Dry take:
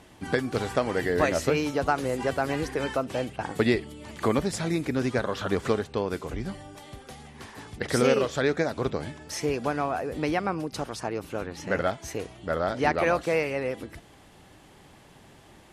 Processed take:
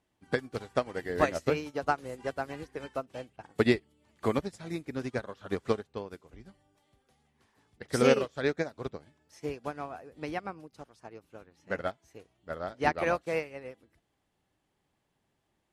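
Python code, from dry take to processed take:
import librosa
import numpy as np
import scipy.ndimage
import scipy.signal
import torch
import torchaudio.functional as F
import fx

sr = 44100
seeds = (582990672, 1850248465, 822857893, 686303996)

y = fx.upward_expand(x, sr, threshold_db=-36.0, expansion=2.5)
y = y * 10.0 ** (1.0 / 20.0)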